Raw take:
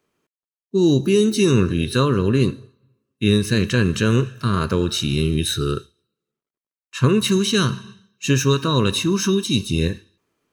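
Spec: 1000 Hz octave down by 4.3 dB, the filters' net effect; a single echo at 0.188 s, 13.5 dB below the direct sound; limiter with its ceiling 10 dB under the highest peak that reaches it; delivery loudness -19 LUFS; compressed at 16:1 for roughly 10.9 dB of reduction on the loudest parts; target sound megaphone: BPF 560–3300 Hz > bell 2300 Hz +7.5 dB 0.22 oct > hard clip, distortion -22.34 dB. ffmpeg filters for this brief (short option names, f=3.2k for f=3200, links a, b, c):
-af "equalizer=f=1k:t=o:g=-5,acompressor=threshold=-22dB:ratio=16,alimiter=limit=-20.5dB:level=0:latency=1,highpass=560,lowpass=3.3k,equalizer=f=2.3k:t=o:w=0.22:g=7.5,aecho=1:1:188:0.211,asoftclip=type=hard:threshold=-29dB,volume=19dB"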